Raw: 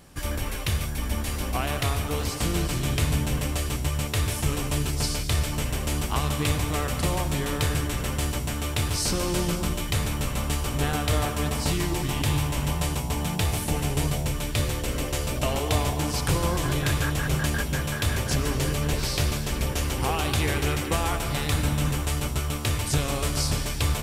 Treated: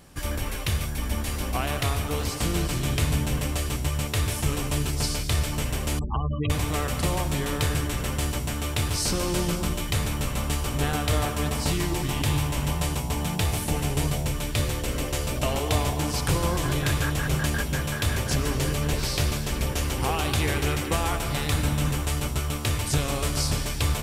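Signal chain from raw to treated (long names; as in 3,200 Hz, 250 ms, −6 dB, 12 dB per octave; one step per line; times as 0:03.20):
0:05.99–0:06.50: gate on every frequency bin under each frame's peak −15 dB strong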